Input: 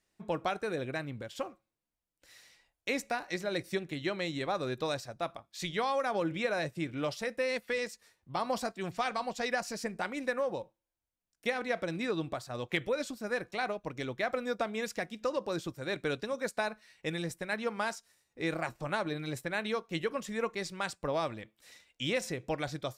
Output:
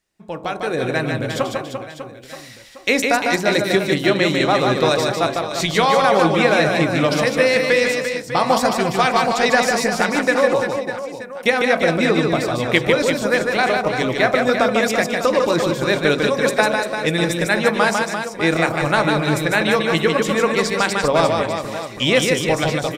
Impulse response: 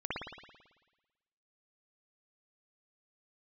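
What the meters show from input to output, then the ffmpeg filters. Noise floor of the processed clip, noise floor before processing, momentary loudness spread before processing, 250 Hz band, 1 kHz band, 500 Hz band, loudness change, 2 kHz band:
-36 dBFS, under -85 dBFS, 6 LU, +17.5 dB, +17.5 dB, +17.0 dB, +17.5 dB, +18.0 dB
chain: -af "bandreject=f=45.78:t=h:w=4,bandreject=f=91.56:t=h:w=4,bandreject=f=137.34:t=h:w=4,bandreject=f=183.12:t=h:w=4,bandreject=f=228.9:t=h:w=4,bandreject=f=274.68:t=h:w=4,bandreject=f=320.46:t=h:w=4,bandreject=f=366.24:t=h:w=4,bandreject=f=412.02:t=h:w=4,bandreject=f=457.8:t=h:w=4,bandreject=f=503.58:t=h:w=4,bandreject=f=549.36:t=h:w=4,bandreject=f=595.14:t=h:w=4,bandreject=f=640.92:t=h:w=4,bandreject=f=686.7:t=h:w=4,bandreject=f=732.48:t=h:w=4,bandreject=f=778.26:t=h:w=4,bandreject=f=824.04:t=h:w=4,bandreject=f=869.82:t=h:w=4,bandreject=f=915.6:t=h:w=4,bandreject=f=961.38:t=h:w=4,bandreject=f=1007.16:t=h:w=4,bandreject=f=1052.94:t=h:w=4,bandreject=f=1098.72:t=h:w=4,bandreject=f=1144.5:t=h:w=4,dynaudnorm=f=280:g=5:m=4.22,aecho=1:1:150|345|598.5|928|1356:0.631|0.398|0.251|0.158|0.1,volume=1.5"

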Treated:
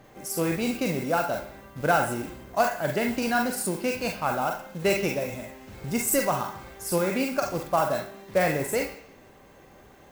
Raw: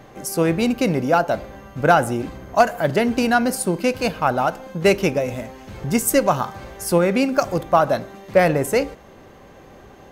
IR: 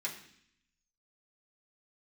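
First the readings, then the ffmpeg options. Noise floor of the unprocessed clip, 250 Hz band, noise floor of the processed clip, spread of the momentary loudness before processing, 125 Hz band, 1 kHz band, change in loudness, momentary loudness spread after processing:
-45 dBFS, -8.0 dB, -52 dBFS, 10 LU, -8.0 dB, -7.0 dB, -7.0 dB, 10 LU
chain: -filter_complex "[0:a]acrusher=bits=5:mode=log:mix=0:aa=0.000001,asplit=2[s0][s1];[s1]aemphasis=mode=production:type=riaa[s2];[1:a]atrim=start_sample=2205,highshelf=f=4400:g=-9,adelay=41[s3];[s2][s3]afir=irnorm=-1:irlink=0,volume=0.631[s4];[s0][s4]amix=inputs=2:normalize=0,volume=0.376"

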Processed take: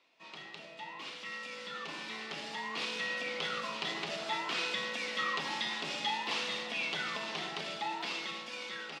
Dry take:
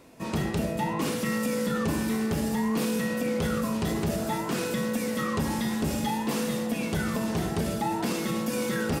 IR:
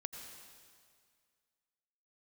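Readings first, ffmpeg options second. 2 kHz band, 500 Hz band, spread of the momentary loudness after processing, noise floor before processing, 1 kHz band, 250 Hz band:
-0.5 dB, -13.5 dB, 10 LU, -32 dBFS, -6.0 dB, -22.0 dB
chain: -filter_complex "[0:a]highpass=f=140:w=0.5412,highpass=f=140:w=1.3066,equalizer=f=230:t=q:w=4:g=-7,equalizer=f=470:t=q:w=4:g=-4,equalizer=f=1600:t=q:w=4:g=-5,lowpass=f=3600:w=0.5412,lowpass=f=3600:w=1.3066,asplit=2[s0][s1];[s1]adelay=190,highpass=300,lowpass=3400,asoftclip=type=hard:threshold=0.0447,volume=0.0631[s2];[s0][s2]amix=inputs=2:normalize=0,asplit=2[s3][s4];[1:a]atrim=start_sample=2205,asetrate=52920,aresample=44100,highshelf=f=6600:g=10.5[s5];[s4][s5]afir=irnorm=-1:irlink=0,volume=0.562[s6];[s3][s6]amix=inputs=2:normalize=0,dynaudnorm=f=610:g=7:m=3.98,aderivative"

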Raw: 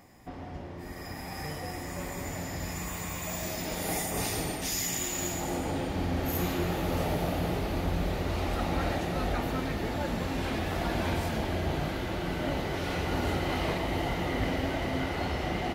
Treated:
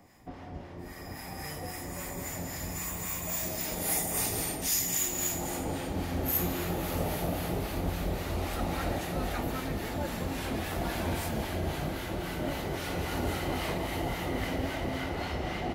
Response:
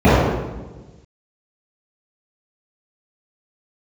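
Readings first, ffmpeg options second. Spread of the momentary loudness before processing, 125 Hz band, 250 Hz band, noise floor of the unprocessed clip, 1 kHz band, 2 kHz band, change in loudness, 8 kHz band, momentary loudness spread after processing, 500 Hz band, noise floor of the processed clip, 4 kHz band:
7 LU, -2.5 dB, -2.5 dB, -41 dBFS, -2.5 dB, -2.5 dB, -0.5 dB, +3.0 dB, 10 LU, -2.5 dB, -43 dBFS, -1.5 dB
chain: -filter_complex "[0:a]acrossover=split=130|1500|7800[s0][s1][s2][s3];[s3]dynaudnorm=f=300:g=9:m=2.82[s4];[s0][s1][s2][s4]amix=inputs=4:normalize=0,acrossover=split=880[s5][s6];[s5]aeval=exprs='val(0)*(1-0.5/2+0.5/2*cos(2*PI*3.7*n/s))':c=same[s7];[s6]aeval=exprs='val(0)*(1-0.5/2-0.5/2*cos(2*PI*3.7*n/s))':c=same[s8];[s7][s8]amix=inputs=2:normalize=0"

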